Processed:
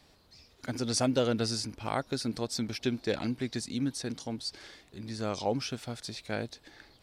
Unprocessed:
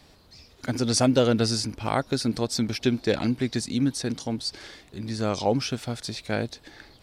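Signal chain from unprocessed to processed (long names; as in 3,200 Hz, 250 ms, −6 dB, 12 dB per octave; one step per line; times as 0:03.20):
low-shelf EQ 320 Hz −2.5 dB
level −6 dB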